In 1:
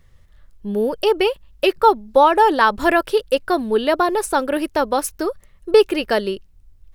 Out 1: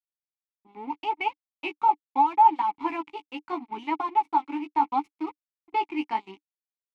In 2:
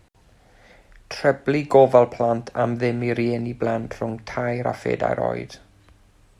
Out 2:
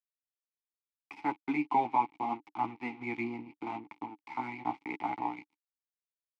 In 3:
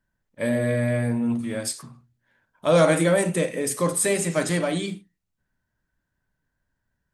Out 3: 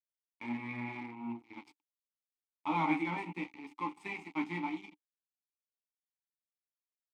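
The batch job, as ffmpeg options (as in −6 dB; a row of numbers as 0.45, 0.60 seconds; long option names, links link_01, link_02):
-filter_complex "[0:a]firequalizer=gain_entry='entry(140,0);entry(460,-8);entry(860,9);entry(9500,-9)':delay=0.05:min_phase=1,alimiter=limit=-3.5dB:level=0:latency=1:release=205,flanger=delay=9.2:depth=8.3:regen=16:speed=0.77:shape=sinusoidal,aeval=exprs='sgn(val(0))*max(abs(val(0))-0.0237,0)':channel_layout=same,asplit=3[link_01][link_02][link_03];[link_01]bandpass=frequency=300:width_type=q:width=8,volume=0dB[link_04];[link_02]bandpass=frequency=870:width_type=q:width=8,volume=-6dB[link_05];[link_03]bandpass=frequency=2240:width_type=q:width=8,volume=-9dB[link_06];[link_04][link_05][link_06]amix=inputs=3:normalize=0,volume=5.5dB"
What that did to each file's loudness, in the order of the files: −8.5, −13.5, −15.0 LU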